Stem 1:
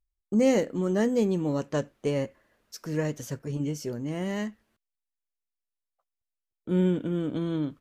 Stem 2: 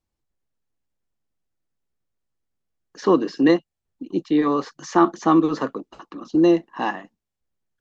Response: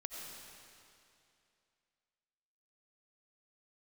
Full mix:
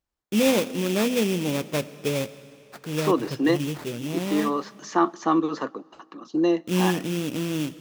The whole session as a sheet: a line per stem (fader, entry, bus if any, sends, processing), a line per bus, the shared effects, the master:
+1.0 dB, 0.00 s, send -11 dB, bass shelf 200 Hz +7 dB; sample-rate reducer 3 kHz, jitter 20%
-3.0 dB, 0.00 s, send -23.5 dB, none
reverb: on, RT60 2.6 s, pre-delay 50 ms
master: high-pass 140 Hz 6 dB/octave; bass shelf 460 Hz -3.5 dB

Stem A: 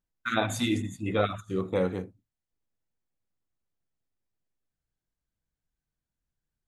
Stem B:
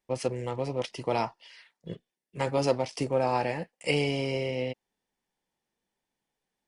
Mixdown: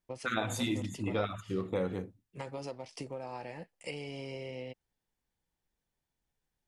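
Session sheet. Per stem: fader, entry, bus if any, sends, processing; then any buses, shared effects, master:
-1.0 dB, 0.00 s, no send, none
-6.5 dB, 0.00 s, no send, compression 6:1, threshold -31 dBFS, peak gain reduction 11.5 dB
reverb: none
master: compression 2:1, threshold -32 dBFS, peak gain reduction 6.5 dB

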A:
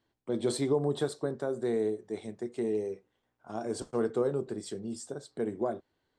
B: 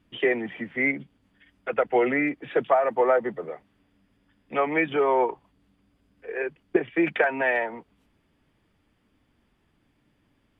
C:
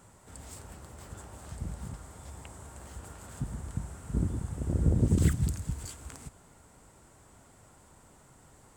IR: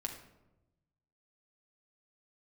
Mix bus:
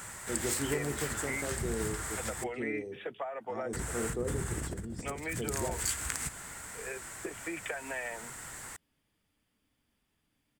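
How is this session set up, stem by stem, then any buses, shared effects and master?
-12.0 dB, 0.00 s, no bus, send -7.5 dB, tilt EQ -2 dB/octave
-11.5 dB, 0.50 s, bus A, no send, band-stop 360 Hz, Q 12
-1.5 dB, 0.00 s, muted 2.44–3.73 s, bus A, send -13 dB, compressor with a negative ratio -33 dBFS, ratio -0.5; peaking EQ 1.8 kHz +14.5 dB 1.3 oct
bus A: 0.0 dB, treble shelf 5.2 kHz +7.5 dB; compression 3:1, threshold -37 dBFS, peak gain reduction 8.5 dB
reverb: on, RT60 1.0 s, pre-delay 6 ms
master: treble shelf 3.3 kHz +9 dB

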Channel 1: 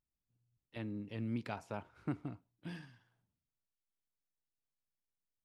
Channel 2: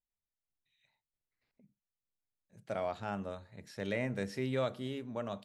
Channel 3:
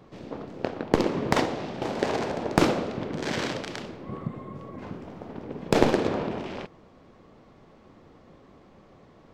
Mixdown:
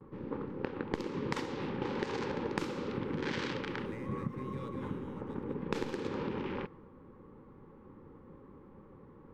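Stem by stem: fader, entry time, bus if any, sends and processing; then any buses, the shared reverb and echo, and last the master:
-14.0 dB, 0.00 s, no send, no echo send, none
-13.0 dB, 0.00 s, no send, echo send -4.5 dB, median filter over 9 samples; band-stop 7.2 kHz, Q 15
0.0 dB, 0.00 s, no send, no echo send, level-controlled noise filter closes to 1.1 kHz, open at -19.5 dBFS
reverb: none
echo: delay 194 ms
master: gate with hold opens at -51 dBFS; Butterworth band-stop 670 Hz, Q 2.5; compression 20:1, threshold -31 dBFS, peak gain reduction 18.5 dB

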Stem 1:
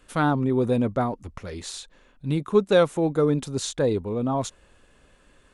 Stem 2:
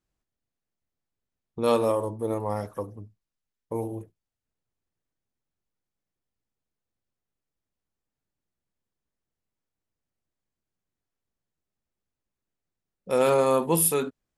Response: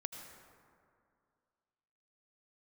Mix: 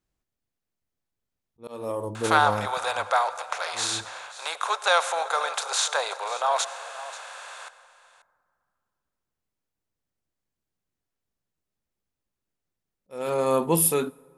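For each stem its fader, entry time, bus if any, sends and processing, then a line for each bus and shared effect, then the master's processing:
+1.5 dB, 2.15 s, send -4 dB, echo send -13.5 dB, spectral levelling over time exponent 0.6; steep high-pass 700 Hz 36 dB/octave
+0.5 dB, 0.00 s, send -20 dB, no echo send, slow attack 540 ms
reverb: on, RT60 2.3 s, pre-delay 73 ms
echo: delay 535 ms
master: none

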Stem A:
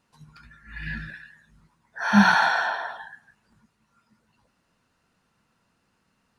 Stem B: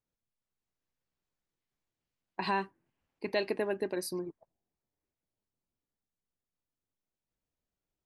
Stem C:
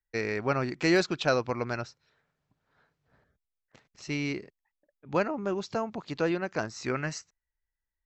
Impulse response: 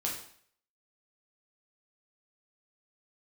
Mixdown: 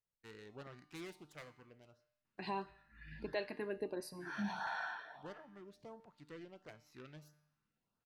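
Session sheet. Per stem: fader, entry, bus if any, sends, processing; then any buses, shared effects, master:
-12.5 dB, 2.25 s, send -11 dB, peak limiter -13 dBFS, peak gain reduction 9 dB
-0.5 dB, 0.00 s, send -19.5 dB, none
-15.0 dB, 0.10 s, send -23 dB, self-modulated delay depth 0.41 ms; auto duck -12 dB, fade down 1.45 s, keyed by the second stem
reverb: on, RT60 0.55 s, pre-delay 5 ms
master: treble shelf 4.1 kHz -6.5 dB; feedback comb 150 Hz, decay 0.83 s, harmonics all, mix 60%; LFO notch saw up 1.5 Hz 210–2600 Hz

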